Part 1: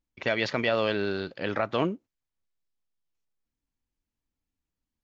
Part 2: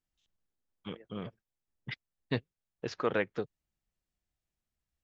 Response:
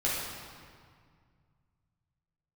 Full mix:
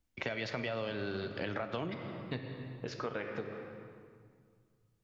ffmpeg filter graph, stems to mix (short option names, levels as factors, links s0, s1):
-filter_complex "[0:a]acrossover=split=140[s0][s1];[s1]acompressor=threshold=0.0282:ratio=2.5[s2];[s0][s2]amix=inputs=2:normalize=0,volume=1.26,asplit=2[s3][s4];[s4]volume=0.168[s5];[1:a]volume=0.668,asplit=2[s6][s7];[s7]volume=0.299[s8];[2:a]atrim=start_sample=2205[s9];[s5][s8]amix=inputs=2:normalize=0[s10];[s10][s9]afir=irnorm=-1:irlink=0[s11];[s3][s6][s11]amix=inputs=3:normalize=0,acompressor=threshold=0.0178:ratio=4"